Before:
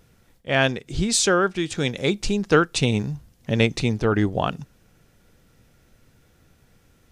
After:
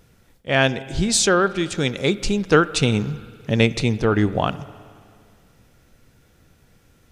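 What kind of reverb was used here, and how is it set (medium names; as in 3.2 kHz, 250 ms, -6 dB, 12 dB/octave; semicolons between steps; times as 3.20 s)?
spring tank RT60 2.2 s, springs 52/57 ms, chirp 30 ms, DRR 16.5 dB; trim +2 dB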